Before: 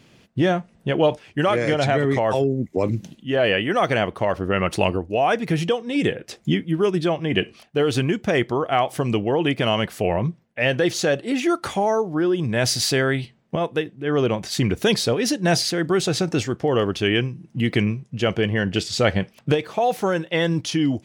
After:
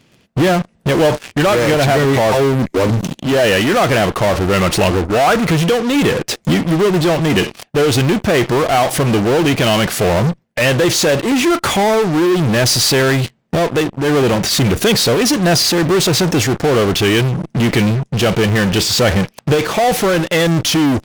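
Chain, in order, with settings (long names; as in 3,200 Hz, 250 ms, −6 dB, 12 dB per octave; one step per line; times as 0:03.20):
in parallel at −3 dB: fuzz pedal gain 41 dB, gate −44 dBFS
0:05.05–0:05.51: on the sum: parametric band 1,300 Hz +8 dB 0.26 octaves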